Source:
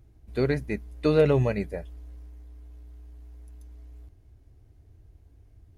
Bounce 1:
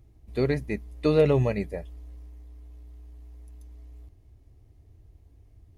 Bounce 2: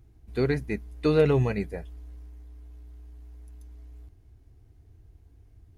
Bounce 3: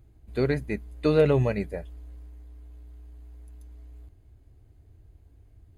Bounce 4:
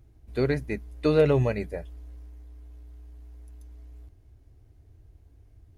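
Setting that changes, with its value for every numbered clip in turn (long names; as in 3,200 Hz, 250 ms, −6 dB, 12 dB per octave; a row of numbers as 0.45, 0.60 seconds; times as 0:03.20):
notch filter, centre frequency: 1,500, 580, 5,600, 190 Hertz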